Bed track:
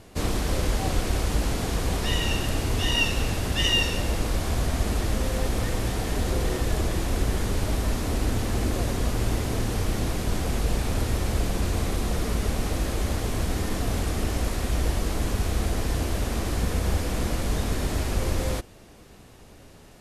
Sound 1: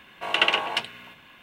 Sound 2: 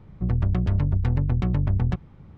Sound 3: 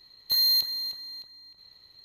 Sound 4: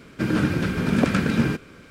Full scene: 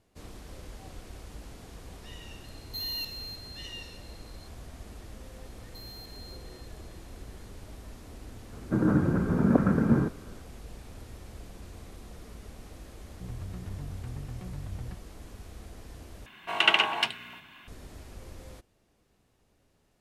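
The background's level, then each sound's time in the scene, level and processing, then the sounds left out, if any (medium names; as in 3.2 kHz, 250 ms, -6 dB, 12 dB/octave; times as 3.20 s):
bed track -20 dB
2.44 s: add 3 -4 dB + compression 1.5:1, threshold -46 dBFS
5.45 s: add 3 -18 dB + compression, threshold -29 dBFS
8.52 s: add 4 -2 dB + low-pass 1.3 kHz 24 dB/octave
12.99 s: add 2 -17 dB
16.26 s: replace with 1 -0.5 dB + peaking EQ 510 Hz -14.5 dB 0.23 oct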